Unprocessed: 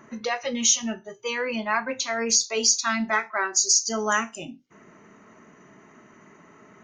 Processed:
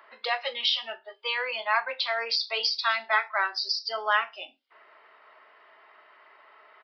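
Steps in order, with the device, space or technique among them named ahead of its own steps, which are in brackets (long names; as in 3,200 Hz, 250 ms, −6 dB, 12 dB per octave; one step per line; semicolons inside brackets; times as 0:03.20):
musical greeting card (downsampling to 11,025 Hz; high-pass filter 590 Hz 24 dB per octave; parametric band 3,400 Hz +7 dB 0.34 octaves)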